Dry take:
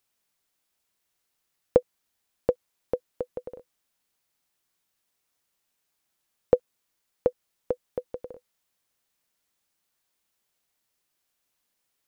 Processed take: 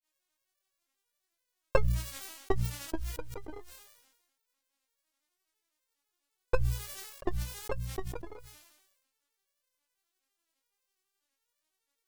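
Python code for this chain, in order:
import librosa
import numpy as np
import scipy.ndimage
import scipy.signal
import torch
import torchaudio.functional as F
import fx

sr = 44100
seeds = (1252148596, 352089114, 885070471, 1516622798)

y = fx.lower_of_two(x, sr, delay_ms=9.0)
y = fx.robotise(y, sr, hz=395.0)
y = fx.granulator(y, sr, seeds[0], grain_ms=160.0, per_s=12.0, spray_ms=18.0, spread_st=7)
y = fx.hum_notches(y, sr, base_hz=60, count=3)
y = fx.sustainer(y, sr, db_per_s=51.0)
y = F.gain(torch.from_numpy(y), 1.0).numpy()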